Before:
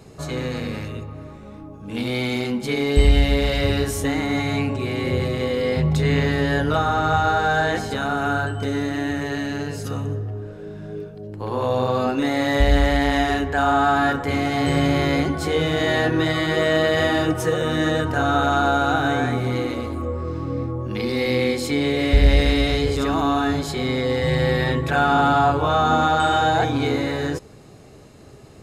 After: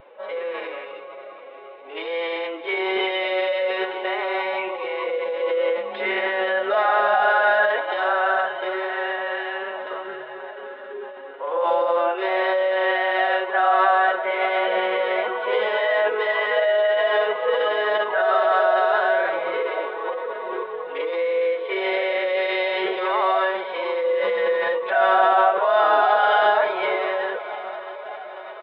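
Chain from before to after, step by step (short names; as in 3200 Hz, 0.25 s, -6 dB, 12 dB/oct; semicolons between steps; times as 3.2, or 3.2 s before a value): HPF 480 Hz 24 dB/oct; in parallel at +2 dB: limiter -16 dBFS, peak gain reduction 8 dB; on the sum: vibrato 0.52 Hz 13 cents; air absorption 290 m; downsampling 8000 Hz; on a send: diffused feedback echo 0.658 s, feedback 66%, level -14 dB; on the sum: formant-preserving pitch shift +5 st; gain -1.5 dB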